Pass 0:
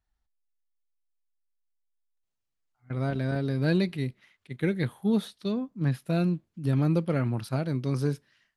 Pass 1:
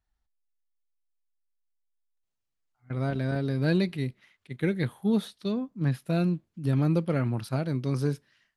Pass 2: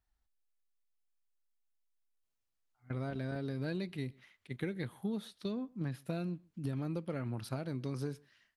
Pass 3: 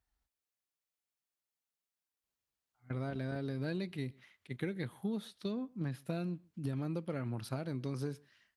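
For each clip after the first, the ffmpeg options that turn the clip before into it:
-af anull
-filter_complex "[0:a]equalizer=f=150:w=3:g=-3.5,acompressor=threshold=-32dB:ratio=6,asplit=2[a][b];[b]adelay=128.3,volume=-27dB,highshelf=f=4k:g=-2.89[c];[a][c]amix=inputs=2:normalize=0,volume=-2dB"
-af "highpass=40"

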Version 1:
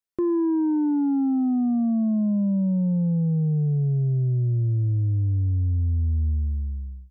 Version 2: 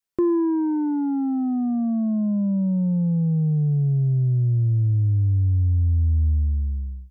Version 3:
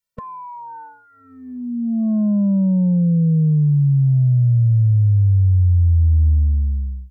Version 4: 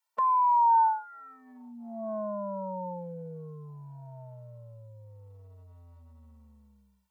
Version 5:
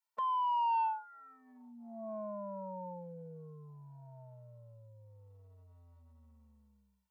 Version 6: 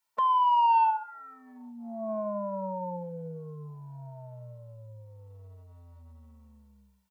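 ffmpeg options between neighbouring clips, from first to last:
-af "adynamicequalizer=threshold=0.0141:dfrequency=360:dqfactor=0.76:tfrequency=360:tqfactor=0.76:attack=5:release=100:ratio=0.375:range=3.5:mode=cutabove:tftype=bell,volume=4dB"
-af "afftfilt=real='re*eq(mod(floor(b*sr/1024/220),2),0)':imag='im*eq(mod(floor(b*sr/1024/220),2),0)':win_size=1024:overlap=0.75,volume=5.5dB"
-af "highpass=f=840:t=q:w=7.4"
-af "asoftclip=type=tanh:threshold=-18.5dB,volume=-7.5dB"
-af "aecho=1:1:73|146|219:0.126|0.0504|0.0201,volume=9dB"

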